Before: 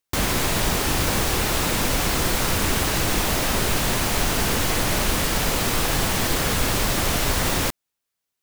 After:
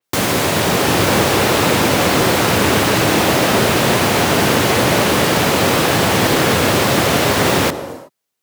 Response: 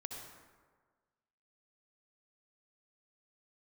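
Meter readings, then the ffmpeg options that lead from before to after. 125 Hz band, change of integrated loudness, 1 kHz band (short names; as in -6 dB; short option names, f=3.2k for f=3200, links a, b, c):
+7.0 dB, +7.5 dB, +10.0 dB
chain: -filter_complex "[0:a]highpass=f=95:w=0.5412,highpass=f=95:w=1.3066,dynaudnorm=f=160:g=9:m=3dB,asplit=2[a][b];[b]equalizer=f=470:t=o:w=2:g=11[c];[1:a]atrim=start_sample=2205,afade=t=out:st=0.34:d=0.01,atrim=end_sample=15435,asetrate=33516,aresample=44100[d];[c][d]afir=irnorm=-1:irlink=0,volume=-10dB[e];[a][e]amix=inputs=2:normalize=0,adynamicequalizer=threshold=0.0158:dfrequency=4700:dqfactor=0.7:tfrequency=4700:tqfactor=0.7:attack=5:release=100:ratio=0.375:range=3:mode=cutabove:tftype=highshelf,volume=4dB"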